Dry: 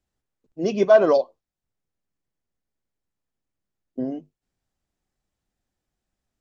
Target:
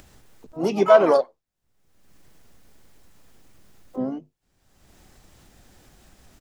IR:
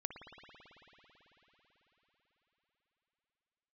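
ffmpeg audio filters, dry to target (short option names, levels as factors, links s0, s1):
-filter_complex "[0:a]acompressor=mode=upward:threshold=0.0316:ratio=2.5,asplit=4[s0][s1][s2][s3];[s1]asetrate=35002,aresample=44100,atempo=1.25992,volume=0.141[s4];[s2]asetrate=66075,aresample=44100,atempo=0.66742,volume=0.158[s5];[s3]asetrate=88200,aresample=44100,atempo=0.5,volume=0.224[s6];[s0][s4][s5][s6]amix=inputs=4:normalize=0"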